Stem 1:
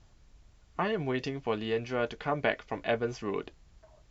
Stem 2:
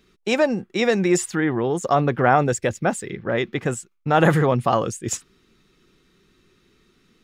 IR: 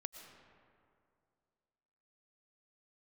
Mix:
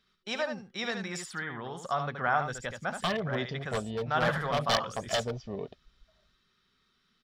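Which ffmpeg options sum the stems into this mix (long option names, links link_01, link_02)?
-filter_complex "[0:a]afwtdn=0.02,aecho=1:1:1.7:0.34,aeval=exprs='0.0631*(abs(mod(val(0)/0.0631+3,4)-2)-1)':channel_layout=same,adelay=2250,volume=1.5dB[link_01];[1:a]equalizer=frequency=1400:width=0.95:gain=9.5,volume=-16.5dB,asplit=2[link_02][link_03];[link_03]volume=-7dB,aecho=0:1:75:1[link_04];[link_01][link_02][link_04]amix=inputs=3:normalize=0,superequalizer=6b=0.355:7b=0.562:13b=2.51:14b=2.51"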